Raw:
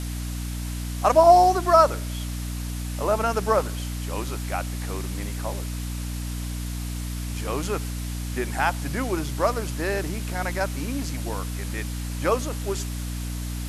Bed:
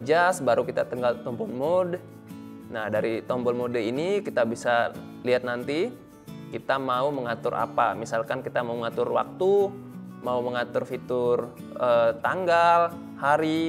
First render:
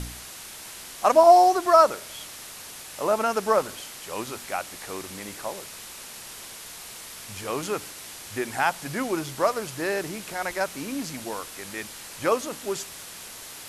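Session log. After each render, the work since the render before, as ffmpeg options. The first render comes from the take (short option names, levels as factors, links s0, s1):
-af "bandreject=f=60:t=h:w=4,bandreject=f=120:t=h:w=4,bandreject=f=180:t=h:w=4,bandreject=f=240:t=h:w=4,bandreject=f=300:t=h:w=4"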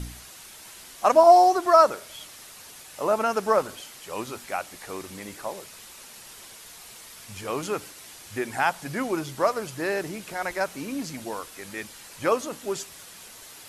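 -af "afftdn=nr=6:nf=-42"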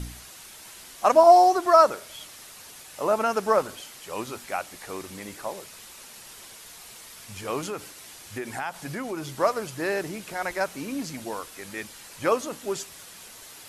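-filter_complex "[0:a]asettb=1/sr,asplit=3[s0][s1][s2];[s0]atrim=end=7.664[s3];[s1]atrim=start=7.66:end=9.32,asetpts=PTS-STARTPTS,afade=t=in:d=0.004:c=qsin,afade=t=out:st=1.656:d=0.004:c=qsin,acompressor=threshold=0.0355:ratio=3:attack=3.2:release=140:knee=1:detection=peak[s4];[s2]atrim=start=9.316[s5];[s3][s4]acrossfade=d=0.004:c1=hsin:c2=qsin[s6];[s6][s5]acrossfade=d=0.004:c1=qsin:c2=hsin"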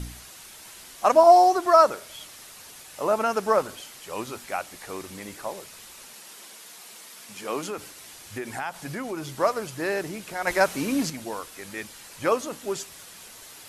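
-filter_complex "[0:a]asettb=1/sr,asplit=3[s0][s1][s2];[s0]atrim=end=6.144[s3];[s1]atrim=start=6.14:end=7.78,asetpts=PTS-STARTPTS,afade=t=in:d=0.004:c=qsin,afade=t=out:st=1.636:d=0.004:c=qsin,highpass=f=170:w=0.5412,highpass=f=170:w=1.3066[s4];[s2]atrim=start=7.776[s5];[s3][s4]acrossfade=d=0.004:c1=hsin:c2=qsin[s6];[s6][s5]acrossfade=d=0.004:c1=qsin:c2=hsin,asplit=3[s7][s8][s9];[s7]atrim=end=10.472[s10];[s8]atrim=start=10.468:end=11.102,asetpts=PTS-STARTPTS,volume=2.11[s11];[s9]atrim=start=11.098[s12];[s10][s11]acrossfade=d=0.004:c1=hsin:c2=hsin[s13];[s13][s12]acrossfade=d=0.004:c1=hsin:c2=hsin"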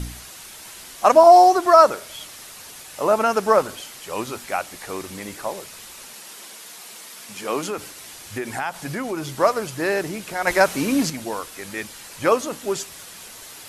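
-af "volume=1.78,alimiter=limit=0.794:level=0:latency=1"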